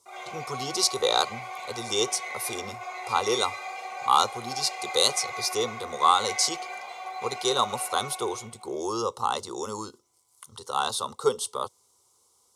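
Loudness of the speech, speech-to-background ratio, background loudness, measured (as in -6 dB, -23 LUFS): -27.0 LUFS, 9.5 dB, -36.5 LUFS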